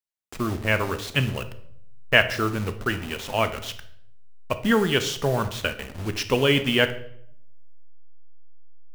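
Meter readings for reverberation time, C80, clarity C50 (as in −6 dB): 0.65 s, 16.0 dB, 12.5 dB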